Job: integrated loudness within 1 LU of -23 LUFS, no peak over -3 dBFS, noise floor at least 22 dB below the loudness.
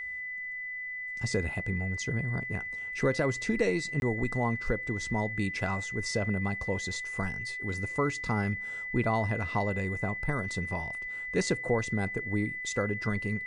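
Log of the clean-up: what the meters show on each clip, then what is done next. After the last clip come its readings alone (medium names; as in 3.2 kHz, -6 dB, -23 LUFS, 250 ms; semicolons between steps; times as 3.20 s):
dropouts 1; longest dropout 21 ms; steady tone 2 kHz; tone level -35 dBFS; loudness -31.5 LUFS; peak level -15.5 dBFS; loudness target -23.0 LUFS
-> interpolate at 4.00 s, 21 ms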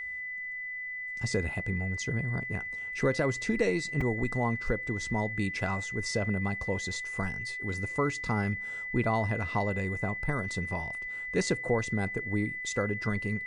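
dropouts 0; steady tone 2 kHz; tone level -35 dBFS
-> band-stop 2 kHz, Q 30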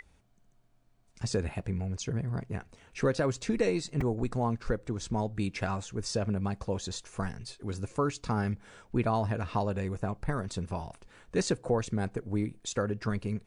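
steady tone not found; loudness -33.0 LUFS; peak level -16.0 dBFS; loudness target -23.0 LUFS
-> trim +10 dB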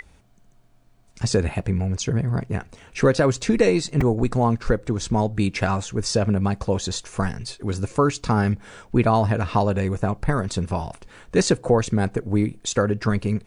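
loudness -23.0 LUFS; peak level -6.0 dBFS; noise floor -54 dBFS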